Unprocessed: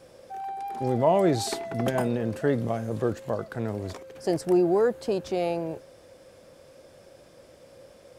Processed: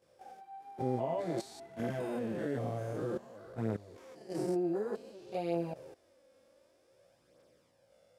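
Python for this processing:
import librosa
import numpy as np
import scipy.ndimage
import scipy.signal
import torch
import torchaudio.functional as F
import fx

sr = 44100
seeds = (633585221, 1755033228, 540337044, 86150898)

y = fx.spec_steps(x, sr, hold_ms=200)
y = fx.level_steps(y, sr, step_db=16)
y = fx.chorus_voices(y, sr, voices=2, hz=0.27, base_ms=20, depth_ms=4.0, mix_pct=70)
y = fx.low_shelf(y, sr, hz=75.0, db=-12.0)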